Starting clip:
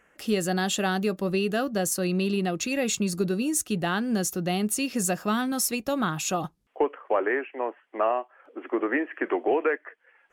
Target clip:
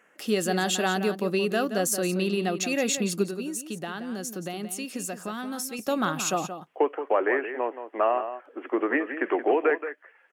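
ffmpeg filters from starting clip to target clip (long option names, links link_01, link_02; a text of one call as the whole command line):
ffmpeg -i in.wav -filter_complex "[0:a]highpass=200,asettb=1/sr,asplit=3[link_01][link_02][link_03];[link_01]atrim=end=3.234[link_04];[link_02]atrim=start=3.23:end=5.79,asetpts=PTS-STARTPTS,afade=type=in:duration=0.004:curve=qsin,afade=type=out:start_time=2.556:duration=0.004:curve=qsin,acompressor=threshold=-32dB:ratio=6[link_05];[link_03]atrim=start=5.786[link_06];[link_04][link_05]acrossfade=duration=0.004:curve1=hsin:curve2=qsin[link_07];[link_07][link_06]acrossfade=duration=0.004:curve1=qsin:curve2=hsin,asplit=2[link_08][link_09];[link_09]adelay=174.9,volume=-10dB,highshelf=frequency=4000:gain=-3.94[link_10];[link_08][link_10]amix=inputs=2:normalize=0,volume=1dB" out.wav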